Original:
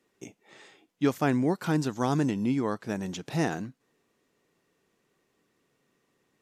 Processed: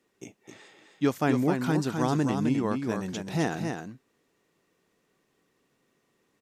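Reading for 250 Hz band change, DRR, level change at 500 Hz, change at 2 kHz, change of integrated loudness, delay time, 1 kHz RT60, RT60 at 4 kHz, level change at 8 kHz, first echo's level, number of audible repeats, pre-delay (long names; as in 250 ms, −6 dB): +1.0 dB, no reverb audible, +1.0 dB, +1.0 dB, +1.0 dB, 260 ms, no reverb audible, no reverb audible, +1.0 dB, −5.5 dB, 1, no reverb audible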